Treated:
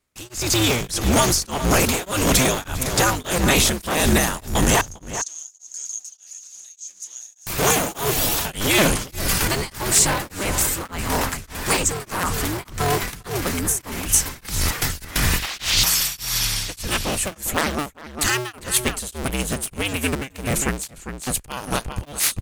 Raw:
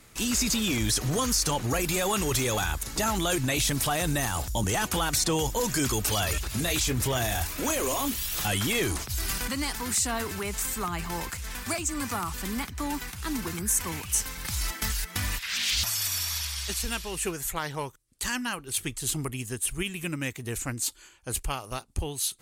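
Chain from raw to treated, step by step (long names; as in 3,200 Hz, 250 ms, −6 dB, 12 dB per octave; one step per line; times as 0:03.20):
sub-harmonics by changed cycles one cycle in 2, inverted
noise gate with hold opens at −36 dBFS
automatic gain control gain up to 11 dB
0:04.81–0:07.47: resonant band-pass 6,500 Hz, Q 16
slap from a distant wall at 69 metres, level −9 dB
tremolo along a rectified sine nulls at 1.7 Hz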